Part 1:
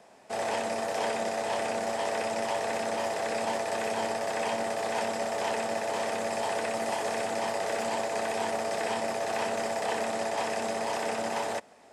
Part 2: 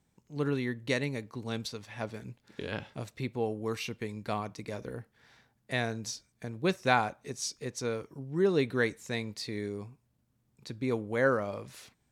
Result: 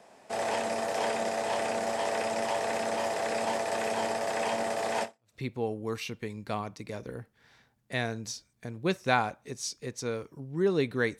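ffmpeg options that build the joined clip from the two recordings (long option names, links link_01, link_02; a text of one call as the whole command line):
ffmpeg -i cue0.wav -i cue1.wav -filter_complex "[0:a]apad=whole_dur=11.19,atrim=end=11.19,atrim=end=5.35,asetpts=PTS-STARTPTS[link_01];[1:a]atrim=start=2.82:end=8.98,asetpts=PTS-STARTPTS[link_02];[link_01][link_02]acrossfade=duration=0.32:curve1=exp:curve2=exp" out.wav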